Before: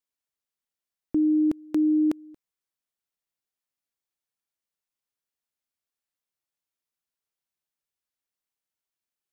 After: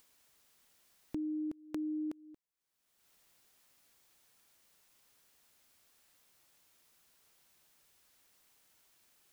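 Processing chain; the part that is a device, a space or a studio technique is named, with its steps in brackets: upward and downward compression (upward compressor, threshold -41 dBFS; compression 3:1, threshold -33 dBFS, peak gain reduction 9.5 dB); trim -6 dB

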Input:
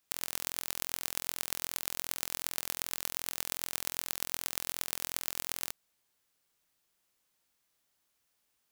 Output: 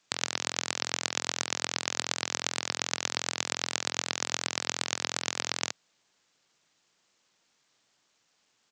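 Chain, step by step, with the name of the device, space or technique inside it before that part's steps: Bluetooth headset (high-pass 110 Hz 24 dB/octave; resampled via 16 kHz; trim +9 dB; SBC 64 kbps 44.1 kHz)

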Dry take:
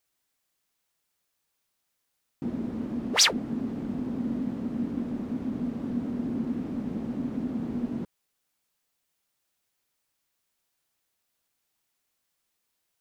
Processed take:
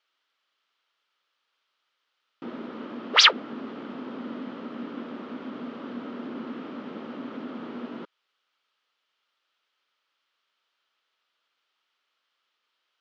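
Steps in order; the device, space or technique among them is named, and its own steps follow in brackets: phone earpiece (cabinet simulation 470–4500 Hz, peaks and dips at 740 Hz -5 dB, 1.3 kHz +8 dB, 3.1 kHz +6 dB); trim +5 dB

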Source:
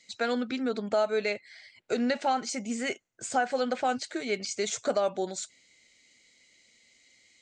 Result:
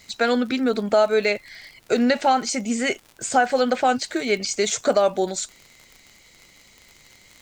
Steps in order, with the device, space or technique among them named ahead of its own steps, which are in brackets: vinyl LP (crackle 56 per s -42 dBFS; pink noise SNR 36 dB); trim +8.5 dB

